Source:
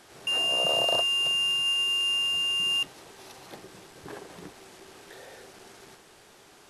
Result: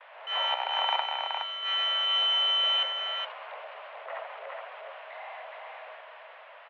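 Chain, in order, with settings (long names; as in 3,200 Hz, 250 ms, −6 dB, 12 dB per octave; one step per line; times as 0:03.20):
stylus tracing distortion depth 0.26 ms
noise gate with hold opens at −46 dBFS
0:00.54–0:01.63: power curve on the samples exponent 2
on a send: single-tap delay 418 ms −4 dB
on the sum: transient designer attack −8 dB, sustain +1 dB
single-sideband voice off tune +250 Hz 270–2,700 Hz
level +5.5 dB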